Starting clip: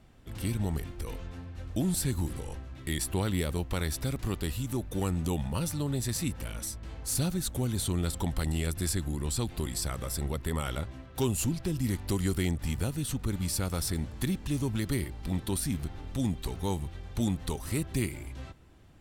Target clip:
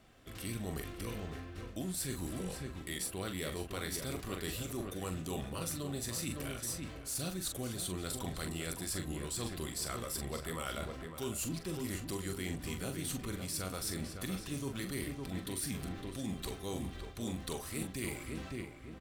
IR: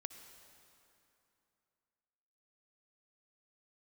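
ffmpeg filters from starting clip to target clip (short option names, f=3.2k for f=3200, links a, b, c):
-filter_complex "[0:a]asuperstop=centerf=880:order=4:qfactor=6.8,lowshelf=f=230:g=-11.5,asplit=2[a][b];[b]adelay=43,volume=-8dB[c];[a][c]amix=inputs=2:normalize=0,acrossover=split=1700[d][e];[e]acrusher=bits=4:mode=log:mix=0:aa=0.000001[f];[d][f]amix=inputs=2:normalize=0,asplit=2[g][h];[h]adelay=559,lowpass=f=2k:p=1,volume=-7dB,asplit=2[i][j];[j]adelay=559,lowpass=f=2k:p=1,volume=0.39,asplit=2[k][l];[l]adelay=559,lowpass=f=2k:p=1,volume=0.39,asplit=2[m][n];[n]adelay=559,lowpass=f=2k:p=1,volume=0.39,asplit=2[o][p];[p]adelay=559,lowpass=f=2k:p=1,volume=0.39[q];[g][i][k][m][o][q]amix=inputs=6:normalize=0,areverse,acompressor=threshold=-36dB:ratio=6,areverse,volume=1dB"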